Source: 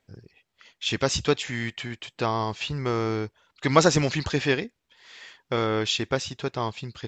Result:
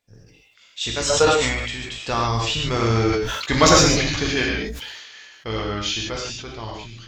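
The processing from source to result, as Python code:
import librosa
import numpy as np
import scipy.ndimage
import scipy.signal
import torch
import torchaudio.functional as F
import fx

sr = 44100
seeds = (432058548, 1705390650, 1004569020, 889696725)

p1 = fx.octave_divider(x, sr, octaves=2, level_db=-5.0)
p2 = fx.doppler_pass(p1, sr, speed_mps=22, closest_m=21.0, pass_at_s=3.1)
p3 = fx.high_shelf(p2, sr, hz=2700.0, db=9.5)
p4 = fx.doubler(p3, sr, ms=18.0, db=-11)
p5 = fx.rev_gated(p4, sr, seeds[0], gate_ms=170, shape='flat', drr_db=-0.5)
p6 = 10.0 ** (-20.0 / 20.0) * np.tanh(p5 / 10.0 ** (-20.0 / 20.0))
p7 = p5 + (p6 * 10.0 ** (-12.0 / 20.0))
p8 = fx.spec_box(p7, sr, start_s=1.1, length_s=0.55, low_hz=450.0, high_hz=1500.0, gain_db=12)
y = fx.sustainer(p8, sr, db_per_s=35.0)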